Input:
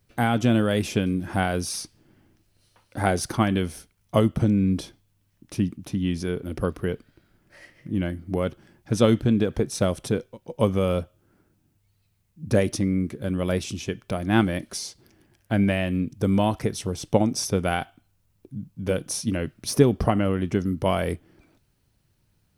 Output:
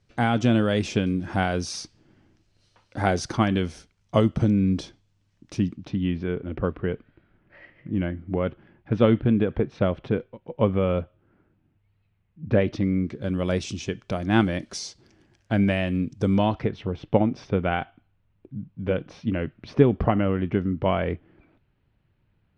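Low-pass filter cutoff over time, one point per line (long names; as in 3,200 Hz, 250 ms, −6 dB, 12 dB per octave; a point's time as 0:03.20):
low-pass filter 24 dB per octave
0:05.68 7,000 Hz
0:06.12 2,900 Hz
0:12.50 2,900 Hz
0:13.39 7,200 Hz
0:16.27 7,200 Hz
0:16.74 3,000 Hz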